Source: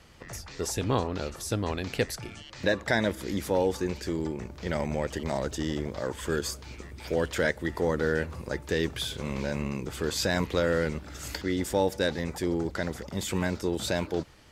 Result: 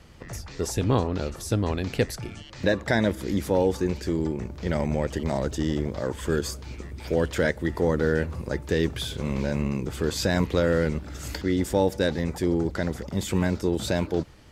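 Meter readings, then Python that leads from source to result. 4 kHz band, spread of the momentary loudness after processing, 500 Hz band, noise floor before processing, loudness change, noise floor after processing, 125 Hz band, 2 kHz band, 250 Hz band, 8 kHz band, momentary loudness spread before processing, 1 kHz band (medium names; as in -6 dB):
0.0 dB, 8 LU, +3.0 dB, -46 dBFS, +3.5 dB, -43 dBFS, +6.0 dB, +0.5 dB, +5.0 dB, 0.0 dB, 8 LU, +1.5 dB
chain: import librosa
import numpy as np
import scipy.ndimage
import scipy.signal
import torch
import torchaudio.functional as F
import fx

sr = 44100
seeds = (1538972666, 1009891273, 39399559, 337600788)

y = fx.low_shelf(x, sr, hz=470.0, db=6.5)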